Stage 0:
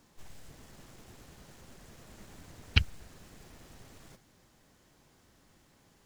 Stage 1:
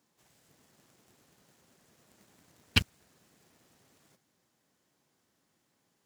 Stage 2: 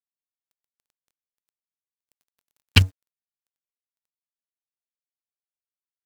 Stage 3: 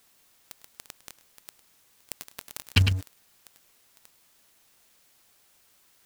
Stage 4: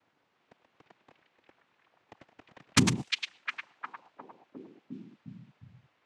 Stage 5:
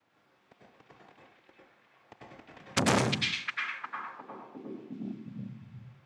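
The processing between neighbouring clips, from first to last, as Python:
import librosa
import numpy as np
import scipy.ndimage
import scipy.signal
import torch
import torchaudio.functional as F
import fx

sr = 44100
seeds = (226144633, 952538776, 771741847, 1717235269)

y1 = scipy.signal.sosfilt(scipy.signal.butter(2, 140.0, 'highpass', fs=sr, output='sos'), x)
y1 = fx.high_shelf(y1, sr, hz=5800.0, db=4.0)
y1 = fx.leveller(y1, sr, passes=3)
y1 = y1 * librosa.db_to_amplitude(-5.0)
y2 = fx.peak_eq(y1, sr, hz=94.0, db=11.5, octaves=0.32)
y2 = np.sign(y2) * np.maximum(np.abs(y2) - 10.0 ** (-48.0 / 20.0), 0.0)
y2 = y2 * librosa.db_to_amplitude(7.5)
y3 = y2 + 10.0 ** (-18.0 / 20.0) * np.pad(y2, (int(104 * sr / 1000.0), 0))[:len(y2)]
y3 = fx.env_flatten(y3, sr, amount_pct=70)
y3 = y3 * librosa.db_to_amplitude(-6.5)
y4 = fx.noise_vocoder(y3, sr, seeds[0], bands=4)
y4 = fx.echo_stepped(y4, sr, ms=355, hz=3000.0, octaves=-0.7, feedback_pct=70, wet_db=-1.0)
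y4 = fx.env_lowpass(y4, sr, base_hz=1700.0, full_db=-27.5)
y5 = fx.rev_plate(y4, sr, seeds[1], rt60_s=0.61, hf_ratio=0.6, predelay_ms=85, drr_db=-4.0)
y5 = fx.transformer_sat(y5, sr, knee_hz=2000.0)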